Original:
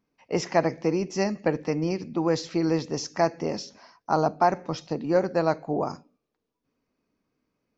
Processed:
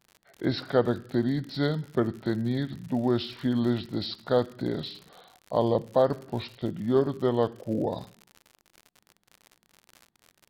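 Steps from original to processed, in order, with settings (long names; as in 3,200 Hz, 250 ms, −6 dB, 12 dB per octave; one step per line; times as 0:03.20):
surface crackle 120 per second −37 dBFS
wrong playback speed 45 rpm record played at 33 rpm
level −1.5 dB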